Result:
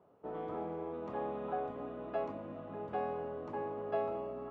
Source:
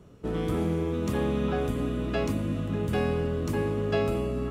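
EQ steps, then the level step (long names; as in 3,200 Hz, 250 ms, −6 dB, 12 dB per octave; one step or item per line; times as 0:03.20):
resonant band-pass 770 Hz, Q 2.4
high-frequency loss of the air 110 metres
0.0 dB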